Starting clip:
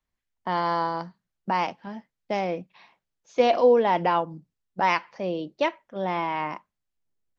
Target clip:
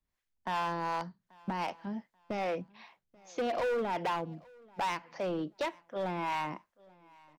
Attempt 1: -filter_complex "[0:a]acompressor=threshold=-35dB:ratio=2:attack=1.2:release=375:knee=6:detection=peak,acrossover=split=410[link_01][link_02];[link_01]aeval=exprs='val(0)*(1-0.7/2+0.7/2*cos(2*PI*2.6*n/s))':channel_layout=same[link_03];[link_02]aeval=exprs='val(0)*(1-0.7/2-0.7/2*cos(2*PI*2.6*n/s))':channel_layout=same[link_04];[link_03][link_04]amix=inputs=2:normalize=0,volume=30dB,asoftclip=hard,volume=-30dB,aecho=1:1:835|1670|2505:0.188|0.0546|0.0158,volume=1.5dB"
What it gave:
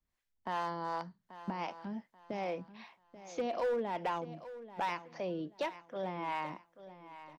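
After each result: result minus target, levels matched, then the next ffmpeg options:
echo-to-direct +11 dB; downward compressor: peak gain reduction +5.5 dB
-filter_complex "[0:a]acompressor=threshold=-35dB:ratio=2:attack=1.2:release=375:knee=6:detection=peak,acrossover=split=410[link_01][link_02];[link_01]aeval=exprs='val(0)*(1-0.7/2+0.7/2*cos(2*PI*2.6*n/s))':channel_layout=same[link_03];[link_02]aeval=exprs='val(0)*(1-0.7/2-0.7/2*cos(2*PI*2.6*n/s))':channel_layout=same[link_04];[link_03][link_04]amix=inputs=2:normalize=0,volume=30dB,asoftclip=hard,volume=-30dB,aecho=1:1:835|1670:0.0531|0.0154,volume=1.5dB"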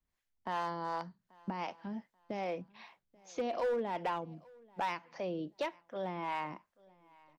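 downward compressor: peak gain reduction +5.5 dB
-filter_complex "[0:a]acompressor=threshold=-24dB:ratio=2:attack=1.2:release=375:knee=6:detection=peak,acrossover=split=410[link_01][link_02];[link_01]aeval=exprs='val(0)*(1-0.7/2+0.7/2*cos(2*PI*2.6*n/s))':channel_layout=same[link_03];[link_02]aeval=exprs='val(0)*(1-0.7/2-0.7/2*cos(2*PI*2.6*n/s))':channel_layout=same[link_04];[link_03][link_04]amix=inputs=2:normalize=0,volume=30dB,asoftclip=hard,volume=-30dB,aecho=1:1:835|1670:0.0531|0.0154,volume=1.5dB"

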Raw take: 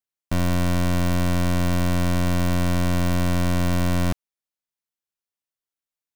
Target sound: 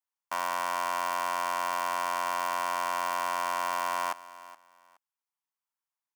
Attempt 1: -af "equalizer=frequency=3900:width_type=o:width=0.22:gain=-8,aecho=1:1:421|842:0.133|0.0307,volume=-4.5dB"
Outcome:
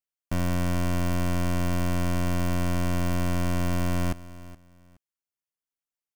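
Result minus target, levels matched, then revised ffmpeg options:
1,000 Hz band −11.0 dB
-af "highpass=frequency=940:width_type=q:width=3.8,equalizer=frequency=3900:width_type=o:width=0.22:gain=-8,aecho=1:1:421|842:0.133|0.0307,volume=-4.5dB"

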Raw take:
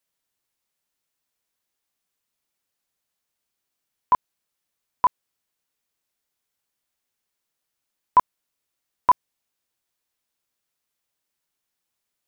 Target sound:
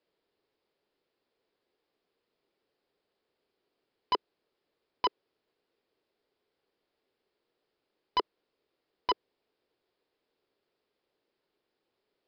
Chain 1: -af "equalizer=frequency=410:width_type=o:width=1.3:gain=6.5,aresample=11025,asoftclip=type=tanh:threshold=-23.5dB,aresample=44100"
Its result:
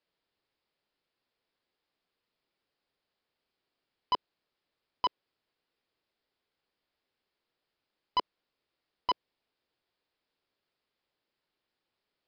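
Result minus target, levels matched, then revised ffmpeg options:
500 Hz band −5.5 dB
-af "equalizer=frequency=410:width_type=o:width=1.3:gain=17.5,aresample=11025,asoftclip=type=tanh:threshold=-23.5dB,aresample=44100"

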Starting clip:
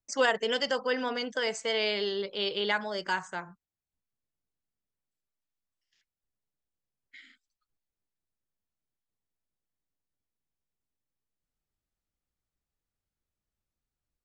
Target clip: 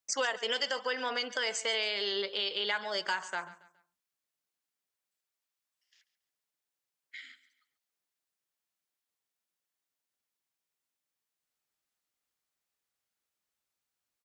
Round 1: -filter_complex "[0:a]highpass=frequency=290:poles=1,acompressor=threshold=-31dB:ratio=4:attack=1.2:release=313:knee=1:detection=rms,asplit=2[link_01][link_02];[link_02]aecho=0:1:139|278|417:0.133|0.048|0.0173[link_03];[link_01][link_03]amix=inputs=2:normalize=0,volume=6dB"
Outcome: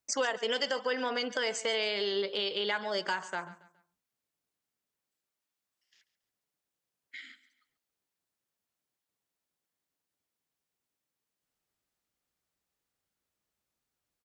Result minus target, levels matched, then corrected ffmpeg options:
250 Hz band +6.0 dB
-filter_complex "[0:a]highpass=frequency=1000:poles=1,acompressor=threshold=-31dB:ratio=4:attack=1.2:release=313:knee=1:detection=rms,asplit=2[link_01][link_02];[link_02]aecho=0:1:139|278|417:0.133|0.048|0.0173[link_03];[link_01][link_03]amix=inputs=2:normalize=0,volume=6dB"

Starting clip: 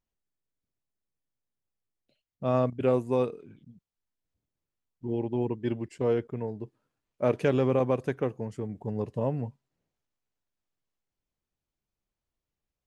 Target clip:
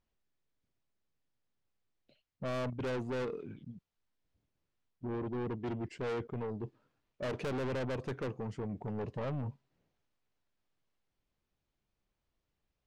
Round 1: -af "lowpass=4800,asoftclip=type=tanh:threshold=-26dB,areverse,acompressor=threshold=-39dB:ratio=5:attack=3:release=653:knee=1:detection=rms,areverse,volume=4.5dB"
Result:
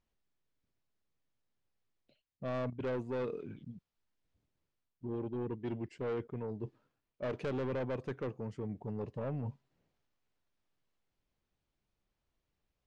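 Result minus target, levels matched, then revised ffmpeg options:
soft clipping: distortion −5 dB
-af "lowpass=4800,asoftclip=type=tanh:threshold=-34dB,areverse,acompressor=threshold=-39dB:ratio=5:attack=3:release=653:knee=1:detection=rms,areverse,volume=4.5dB"

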